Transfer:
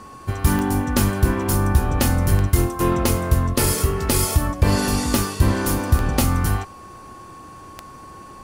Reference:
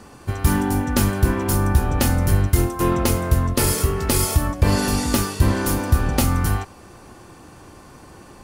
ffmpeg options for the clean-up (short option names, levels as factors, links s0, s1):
-af "adeclick=t=4,bandreject=f=1100:w=30"